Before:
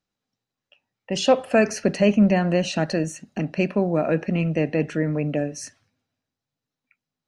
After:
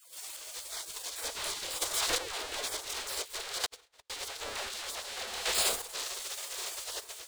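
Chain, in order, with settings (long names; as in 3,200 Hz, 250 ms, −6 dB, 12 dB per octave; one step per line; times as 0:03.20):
sign of each sample alone
all-pass dispersion lows, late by 144 ms, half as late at 610 Hz
gate on every frequency bin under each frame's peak −20 dB weak
on a send: delay that swaps between a low-pass and a high-pass 451 ms, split 1,900 Hz, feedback 51%, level −11 dB
on the sum: square-wave tremolo 0.55 Hz, depth 65%, duty 20%
graphic EQ with 10 bands 125 Hz −8 dB, 250 Hz −7 dB, 500 Hz +10 dB, 4,000 Hz +8 dB, 8,000 Hz +9 dB
0:03.66–0:04.10: noise gate −22 dBFS, range −50 dB
high-shelf EQ 2,400 Hz −10 dB
automatic gain control gain up to 11.5 dB
level −8 dB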